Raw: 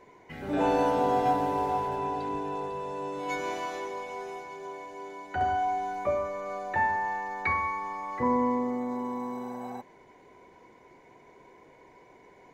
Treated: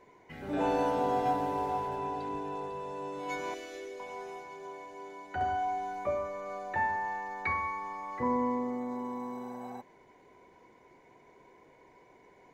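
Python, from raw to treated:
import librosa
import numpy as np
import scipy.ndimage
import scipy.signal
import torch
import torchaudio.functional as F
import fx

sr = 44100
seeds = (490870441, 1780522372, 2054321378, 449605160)

y = fx.fixed_phaser(x, sr, hz=380.0, stages=4, at=(3.54, 4.0))
y = F.gain(torch.from_numpy(y), -4.0).numpy()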